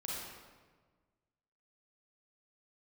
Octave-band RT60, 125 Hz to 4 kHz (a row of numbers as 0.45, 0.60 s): 1.9, 1.7, 1.5, 1.4, 1.2, 1.0 s